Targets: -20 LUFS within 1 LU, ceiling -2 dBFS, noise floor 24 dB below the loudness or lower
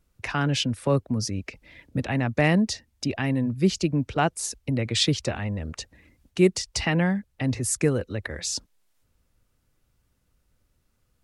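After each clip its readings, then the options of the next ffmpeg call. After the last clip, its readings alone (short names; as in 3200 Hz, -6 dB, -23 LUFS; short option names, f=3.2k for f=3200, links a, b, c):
loudness -25.5 LUFS; peak -8.0 dBFS; loudness target -20.0 LUFS
-> -af "volume=5.5dB"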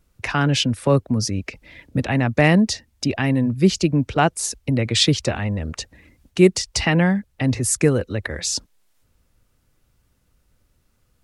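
loudness -20.0 LUFS; peak -2.5 dBFS; noise floor -65 dBFS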